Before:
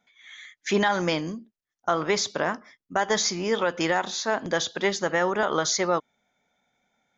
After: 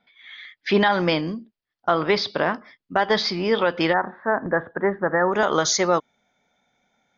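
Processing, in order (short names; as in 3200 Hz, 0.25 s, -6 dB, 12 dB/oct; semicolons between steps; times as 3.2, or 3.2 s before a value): Chebyshev low-pass 4900 Hz, order 5, from 3.92 s 1800 Hz, from 5.32 s 6600 Hz; gain +4.5 dB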